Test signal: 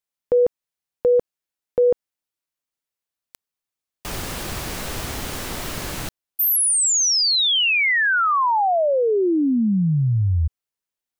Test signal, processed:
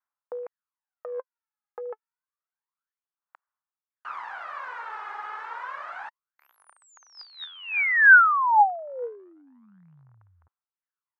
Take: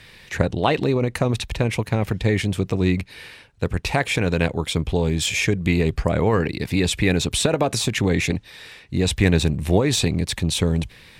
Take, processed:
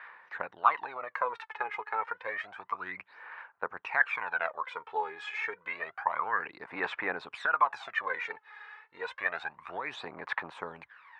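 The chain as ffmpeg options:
-af "aphaser=in_gain=1:out_gain=1:delay=2.4:decay=0.7:speed=0.29:type=sinusoidal,asuperpass=centerf=1200:order=4:qfactor=1.6"

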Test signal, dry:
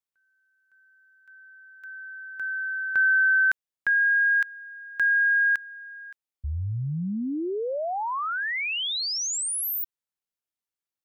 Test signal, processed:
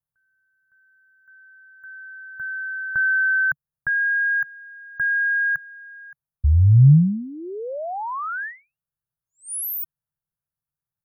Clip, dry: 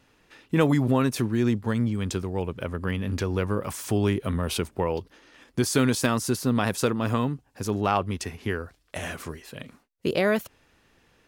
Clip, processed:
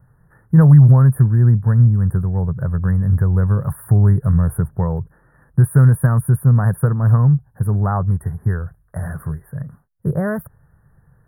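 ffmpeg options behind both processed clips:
-af "asuperstop=centerf=4300:order=20:qfactor=0.56,lowshelf=f=200:t=q:w=3:g=11,volume=1.12"

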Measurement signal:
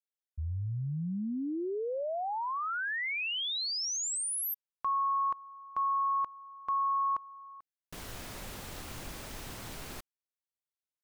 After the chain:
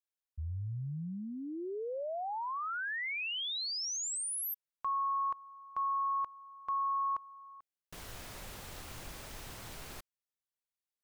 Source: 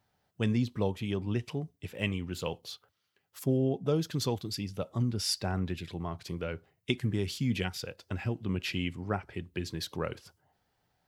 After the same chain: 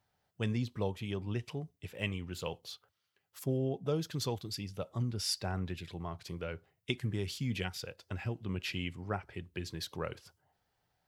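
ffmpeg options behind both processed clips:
-af "equalizer=f=250:t=o:w=1.1:g=-4,volume=0.708"

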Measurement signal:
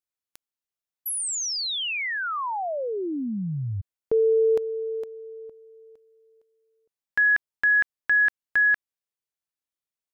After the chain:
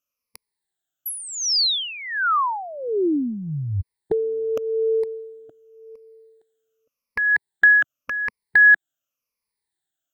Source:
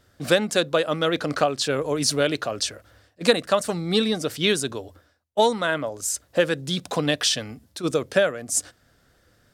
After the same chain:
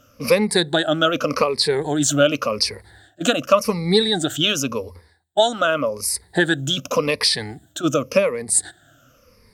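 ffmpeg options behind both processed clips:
-filter_complex "[0:a]afftfilt=real='re*pow(10,19/40*sin(2*PI*(0.88*log(max(b,1)*sr/1024/100)/log(2)-(-0.88)*(pts-256)/sr)))':imag='im*pow(10,19/40*sin(2*PI*(0.88*log(max(b,1)*sr/1024/100)/log(2)-(-0.88)*(pts-256)/sr)))':win_size=1024:overlap=0.75,asplit=2[s0][s1];[s1]acompressor=threshold=0.0501:ratio=6:attack=42:release=186:detection=peak,volume=0.891[s2];[s0][s2]amix=inputs=2:normalize=0,volume=0.75"

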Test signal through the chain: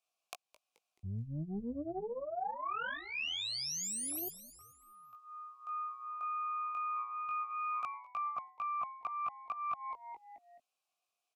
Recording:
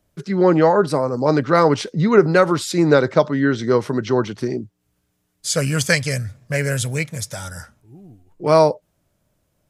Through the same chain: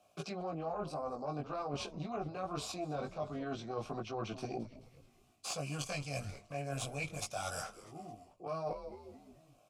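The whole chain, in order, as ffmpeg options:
-filter_complex "[0:a]acrossover=split=210[s0][s1];[s1]acompressor=threshold=0.0158:ratio=2.5[s2];[s0][s2]amix=inputs=2:normalize=0,alimiter=limit=0.126:level=0:latency=1:release=349,flanger=delay=18:depth=3.2:speed=0.23,highshelf=f=3500:g=10.5,aeval=exprs='0.2*(cos(1*acos(clip(val(0)/0.2,-1,1)))-cos(1*PI/2))+0.0708*(cos(2*acos(clip(val(0)/0.2,-1,1)))-cos(2*PI/2))+0.00708*(cos(6*acos(clip(val(0)/0.2,-1,1)))-cos(6*PI/2))':c=same,asplit=3[s3][s4][s5];[s3]bandpass=f=730:t=q:w=8,volume=1[s6];[s4]bandpass=f=1090:t=q:w=8,volume=0.501[s7];[s5]bandpass=f=2440:t=q:w=8,volume=0.355[s8];[s6][s7][s8]amix=inputs=3:normalize=0,bass=f=250:g=6,treble=f=4000:g=8,asplit=5[s9][s10][s11][s12][s13];[s10]adelay=215,afreqshift=-120,volume=0.112[s14];[s11]adelay=430,afreqshift=-240,volume=0.055[s15];[s12]adelay=645,afreqshift=-360,volume=0.0269[s16];[s13]adelay=860,afreqshift=-480,volume=0.0132[s17];[s9][s14][s15][s16][s17]amix=inputs=5:normalize=0,areverse,acompressor=threshold=0.00282:ratio=12,areverse,volume=5.96"

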